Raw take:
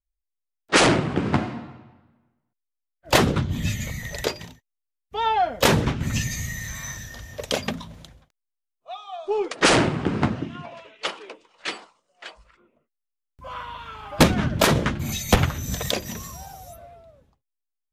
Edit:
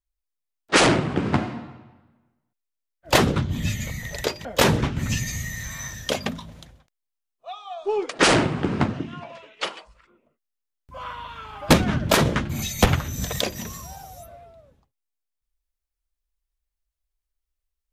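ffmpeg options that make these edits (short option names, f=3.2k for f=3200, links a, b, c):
-filter_complex "[0:a]asplit=4[a][b][c][d];[a]atrim=end=4.452[e];[b]atrim=start=5.488:end=7.132[f];[c]atrim=start=7.508:end=11.192[g];[d]atrim=start=12.268[h];[e][f]acrossfade=d=0.004:c1=hsin:c2=hsin[i];[i][g]acrossfade=d=0.004:c1=hsin:c2=hsin[j];[j][h]acrossfade=d=0.004:c1=hsin:c2=hsin"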